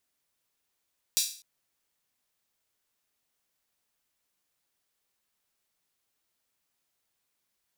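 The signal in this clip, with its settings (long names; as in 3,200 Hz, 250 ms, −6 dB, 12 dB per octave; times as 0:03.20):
open synth hi-hat length 0.25 s, high-pass 4,400 Hz, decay 0.43 s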